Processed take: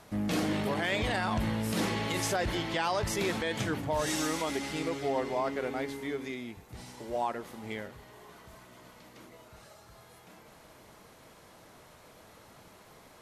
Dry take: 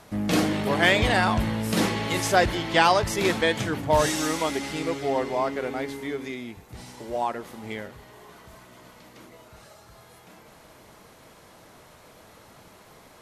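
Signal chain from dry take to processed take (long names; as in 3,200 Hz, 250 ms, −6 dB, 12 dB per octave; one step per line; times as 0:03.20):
brickwall limiter −17 dBFS, peak gain reduction 10.5 dB
level −4 dB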